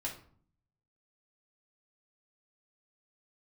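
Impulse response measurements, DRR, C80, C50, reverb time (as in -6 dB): -3.5 dB, 13.5 dB, 8.5 dB, 0.50 s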